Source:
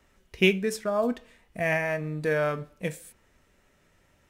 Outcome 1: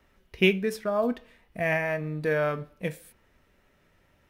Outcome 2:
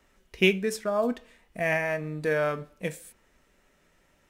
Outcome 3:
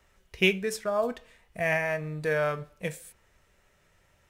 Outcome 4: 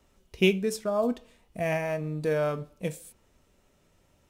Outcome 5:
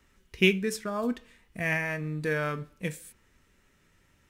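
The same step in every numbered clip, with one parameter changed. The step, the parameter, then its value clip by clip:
parametric band, centre frequency: 7,500, 98, 260, 1,800, 650 Hertz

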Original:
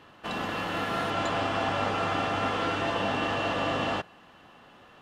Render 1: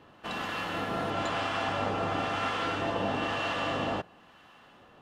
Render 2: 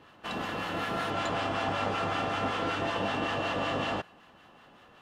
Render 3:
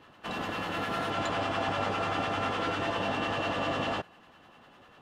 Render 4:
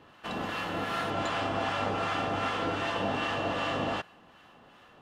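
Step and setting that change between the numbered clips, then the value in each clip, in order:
two-band tremolo in antiphase, speed: 1, 5.3, 10, 2.6 Hertz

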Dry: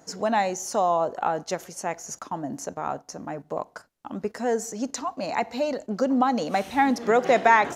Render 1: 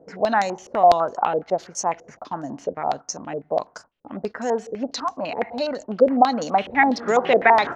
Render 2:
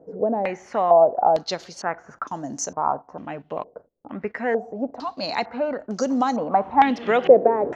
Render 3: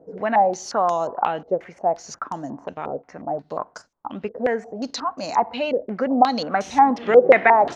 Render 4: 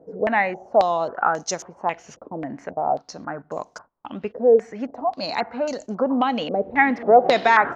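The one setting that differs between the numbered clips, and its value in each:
low-pass on a step sequencer, speed: 12, 2.2, 5.6, 3.7 Hertz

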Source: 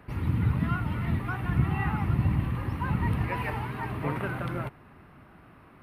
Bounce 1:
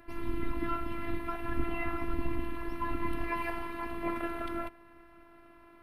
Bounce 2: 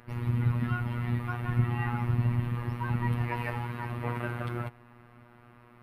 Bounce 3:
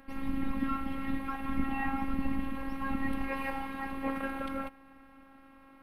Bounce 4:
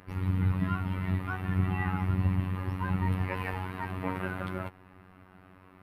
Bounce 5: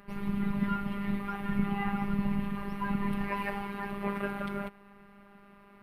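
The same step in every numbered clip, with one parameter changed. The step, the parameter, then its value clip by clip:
phases set to zero, frequency: 340, 120, 270, 93, 200 Hertz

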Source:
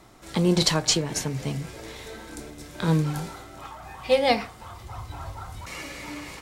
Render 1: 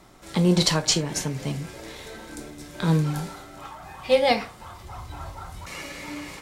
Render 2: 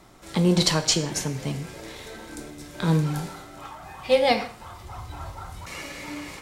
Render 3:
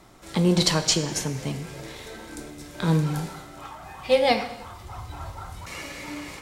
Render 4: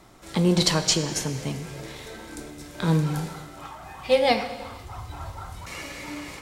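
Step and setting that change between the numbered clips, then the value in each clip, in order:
reverb whose tail is shaped and stops, gate: 90, 200, 340, 530 milliseconds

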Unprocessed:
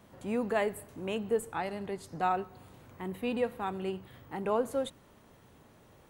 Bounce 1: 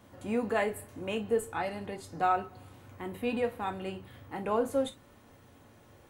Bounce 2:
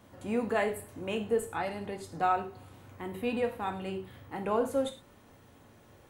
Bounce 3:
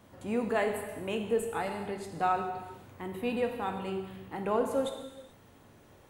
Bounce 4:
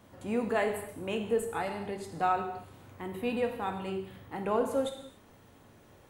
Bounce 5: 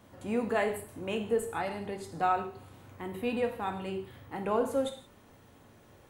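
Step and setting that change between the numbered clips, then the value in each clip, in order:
reverb whose tail is shaped and stops, gate: 80, 140, 470, 310, 200 milliseconds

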